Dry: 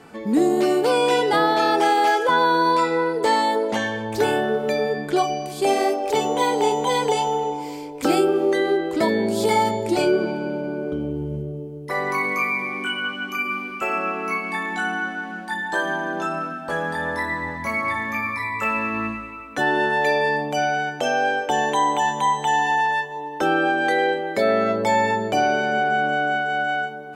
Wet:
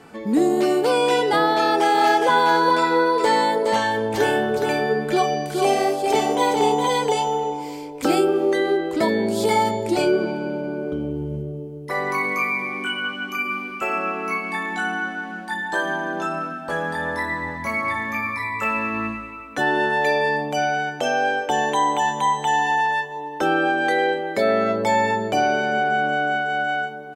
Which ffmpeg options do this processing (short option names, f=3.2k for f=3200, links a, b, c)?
-filter_complex "[0:a]asplit=3[a][b][c];[a]afade=t=out:st=1.93:d=0.02[d];[b]aecho=1:1:416:0.596,afade=t=in:st=1.93:d=0.02,afade=t=out:st=6.86:d=0.02[e];[c]afade=t=in:st=6.86:d=0.02[f];[d][e][f]amix=inputs=3:normalize=0"